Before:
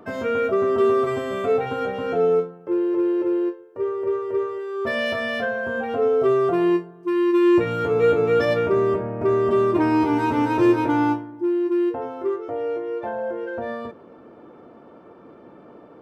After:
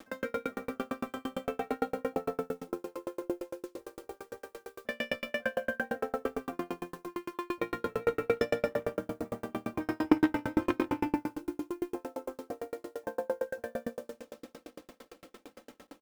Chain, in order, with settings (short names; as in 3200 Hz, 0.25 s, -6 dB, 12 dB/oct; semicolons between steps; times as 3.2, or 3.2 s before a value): tracing distortion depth 0.027 ms; 9.82–11.07 bell 87 Hz +10 dB 0.33 oct; tape echo 0.327 s, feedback 69%, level -19.5 dB, low-pass 4800 Hz; reverb RT60 1.5 s, pre-delay 85 ms, DRR 1.5 dB; added harmonics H 3 -12 dB, 4 -33 dB, 5 -21 dB, 7 -41 dB, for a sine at -4 dBFS; dynamic EQ 390 Hz, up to -7 dB, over -35 dBFS, Q 3.4; bit-crush 8-bit; comb 3.8 ms, depth 71%; dB-ramp tremolo decaying 8.8 Hz, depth 40 dB